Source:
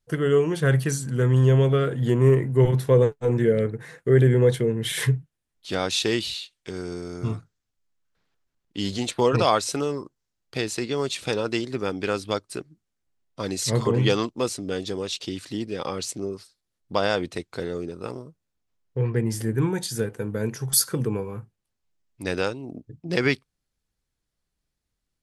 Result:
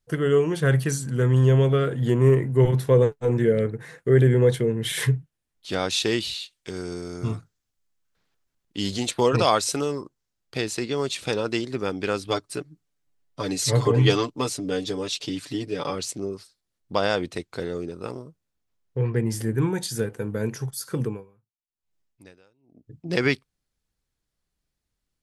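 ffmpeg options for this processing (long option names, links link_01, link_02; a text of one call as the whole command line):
ffmpeg -i in.wav -filter_complex "[0:a]asettb=1/sr,asplit=3[link_01][link_02][link_03];[link_01]atrim=end=6.404[link_04];[link_02]atrim=start=6.4:end=10.01,asetpts=PTS-STARTPTS,afade=type=in:duration=0.004:curve=qsin,afade=type=out:start_time=3.606:duration=0.004:curve=qsin,highshelf=frequency=4700:gain=4.5[link_05];[link_03]atrim=start=10.006[link_06];[link_04][link_05]acrossfade=duration=0.004:curve1=hsin:curve2=qsin[link_07];[link_07][link_06]acrossfade=duration=0.004:curve1=qsin:curve2=hsin,asettb=1/sr,asplit=3[link_08][link_09][link_10];[link_08]atrim=end=12.274[link_11];[link_09]atrim=start=12.27:end=15.95,asetpts=PTS-STARTPTS,afade=type=in:duration=0.004:curve=qsin,afade=type=out:start_time=3.676:duration=0.004:curve=qsin,aecho=1:1:6.9:0.69,atrim=end_sample=162288[link_12];[link_10]atrim=start=15.946[link_13];[link_11][link_12]acrossfade=duration=0.004:curve1=hsin:curve2=qsin[link_14];[link_14][link_13]acrossfade=duration=0.004:curve1=qsin:curve2=hsin,asplit=3[link_15][link_16][link_17];[link_15]afade=type=out:start_time=20.69:duration=0.02[link_18];[link_16]aeval=exprs='val(0)*pow(10,-35*(0.5-0.5*cos(2*PI*1*n/s))/20)':channel_layout=same,afade=type=in:start_time=20.69:duration=0.02,afade=type=out:start_time=22.94:duration=0.02[link_19];[link_17]afade=type=in:start_time=22.94:duration=0.02[link_20];[link_18][link_19][link_20]amix=inputs=3:normalize=0" out.wav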